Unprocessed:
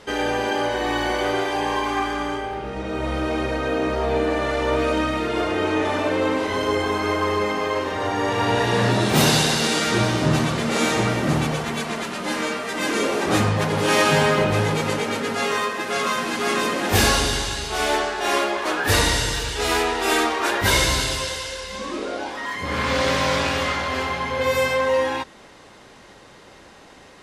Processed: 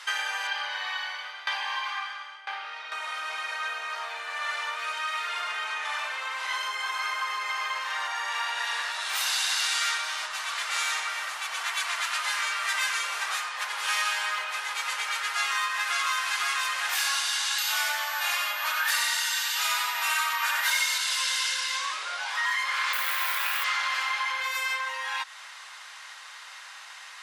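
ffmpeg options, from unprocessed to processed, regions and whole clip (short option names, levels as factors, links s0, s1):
-filter_complex "[0:a]asettb=1/sr,asplit=3[s0][s1][s2];[s0]atrim=end=0.474[s3];[s1]atrim=start=0.47:end=2.92,asetpts=PTS-STARTPTS,afade=t=in:d=0.004:c=qsin,afade=t=out:st=2.446:d=0.004:c=qsin,highshelf=f=5900:t=q:w=1.5:g=-8.5,aeval=exprs='val(0)*pow(10,-21*if(lt(mod(1*n/s,1),2*abs(1)/1000),1-mod(1*n/s,1)/(2*abs(1)/1000),(mod(1*n/s,1)-2*abs(1)/1000)/(1-2*abs(1)/1000))/20)':c=same[s4];[s2]atrim=start=2.916[s5];[s3][s4]acrossfade=d=0.004:c1=hsin:c2=qsin[s6];[s6][s5]acrossfade=d=0.004:c1=qsin:c2=hsin,asettb=1/sr,asplit=3[s7][s8][s9];[s7]atrim=end=17.584[s10];[s8]atrim=start=17.58:end=20.98,asetpts=PTS-STARTPTS,afade=t=in:d=0.004:c=qsin,afade=t=out:st=3.396:d=0.004:c=qsin,aecho=1:1:3.3:0.55,atrim=end_sample=149940,aecho=1:1:91:0.596,atrim=end_sample=149940,aeval=exprs='val(0)+0.0158*sin(2*PI*12000*n/s)':c=same[s11];[s9]atrim=start=20.976[s12];[s10][s11]acrossfade=d=0.004:c1=hsin:c2=qsin[s13];[s13][s12]acrossfade=d=0.004:c1=qsin:c2=hsin,asettb=1/sr,asplit=3[s14][s15][s16];[s14]atrim=end=22.934[s17];[s15]atrim=start=22.93:end=23.64,asetpts=PTS-STARTPTS,afade=t=in:d=0.004:c=qsin,afade=t=out:st=0.706:d=0.004:c=qsin,lowpass=2300,acrusher=bits=6:mode=log:mix=0:aa=0.000001,aemphasis=mode=production:type=75fm[s18];[s16]atrim=start=23.636[s19];[s17][s18]acrossfade=d=0.004:c1=hsin:c2=qsin[s20];[s20][s19]acrossfade=d=0.004:c1=qsin:c2=hsin,acompressor=threshold=0.0398:ratio=6,highpass=f=1100:w=0.5412,highpass=f=1100:w=1.3066,volume=2.11"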